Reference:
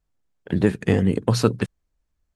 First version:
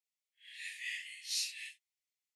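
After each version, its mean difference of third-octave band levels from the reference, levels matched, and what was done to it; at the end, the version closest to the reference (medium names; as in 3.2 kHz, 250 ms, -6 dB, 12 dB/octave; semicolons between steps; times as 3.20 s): 25.5 dB: phase randomisation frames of 200 ms; steep high-pass 1.9 kHz 96 dB/octave; trim -4 dB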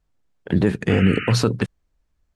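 3.0 dB: treble shelf 8.7 kHz -9 dB; peak limiter -12 dBFS, peak gain reduction 8 dB; painted sound noise, 0.89–1.33 s, 1.2–3 kHz -35 dBFS; trim +5 dB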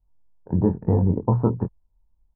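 8.5 dB: four-pole ladder low-pass 990 Hz, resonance 75%; tilt EQ -4 dB/octave; doubling 23 ms -5 dB; trim +1 dB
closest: second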